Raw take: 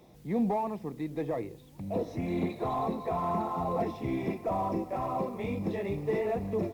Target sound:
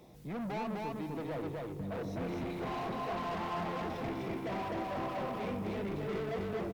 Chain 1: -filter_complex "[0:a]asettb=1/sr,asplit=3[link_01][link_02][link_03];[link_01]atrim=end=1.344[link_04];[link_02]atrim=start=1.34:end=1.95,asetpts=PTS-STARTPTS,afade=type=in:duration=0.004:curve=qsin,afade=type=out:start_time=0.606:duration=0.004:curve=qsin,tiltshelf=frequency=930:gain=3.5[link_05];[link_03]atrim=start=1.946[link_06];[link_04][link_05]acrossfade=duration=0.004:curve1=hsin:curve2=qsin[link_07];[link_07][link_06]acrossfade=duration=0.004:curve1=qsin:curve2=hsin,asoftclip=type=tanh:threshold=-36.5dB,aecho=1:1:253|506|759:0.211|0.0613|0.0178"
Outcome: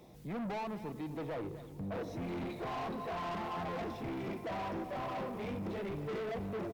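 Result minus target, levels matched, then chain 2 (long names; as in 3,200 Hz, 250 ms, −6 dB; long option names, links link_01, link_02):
echo-to-direct −11.5 dB
-filter_complex "[0:a]asettb=1/sr,asplit=3[link_01][link_02][link_03];[link_01]atrim=end=1.344[link_04];[link_02]atrim=start=1.34:end=1.95,asetpts=PTS-STARTPTS,afade=type=in:duration=0.004:curve=qsin,afade=type=out:start_time=0.606:duration=0.004:curve=qsin,tiltshelf=frequency=930:gain=3.5[link_05];[link_03]atrim=start=1.946[link_06];[link_04][link_05]acrossfade=duration=0.004:curve1=hsin:curve2=qsin[link_07];[link_07][link_06]acrossfade=duration=0.004:curve1=qsin:curve2=hsin,asoftclip=type=tanh:threshold=-36.5dB,aecho=1:1:253|506|759|1012:0.794|0.23|0.0668|0.0194"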